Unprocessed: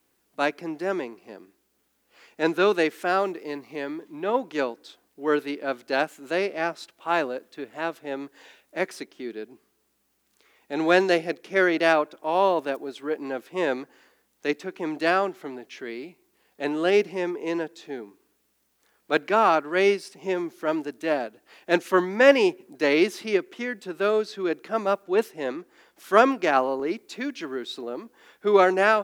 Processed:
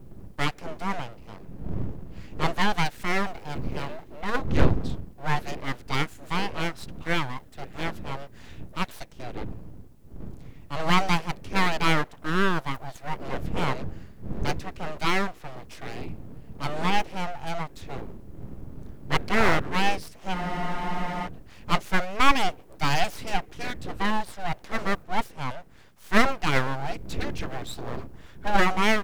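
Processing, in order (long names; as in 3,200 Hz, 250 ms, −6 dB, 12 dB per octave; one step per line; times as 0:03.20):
wind on the microphone 110 Hz −33 dBFS
full-wave rectification
frozen spectrum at 0:20.36, 0.90 s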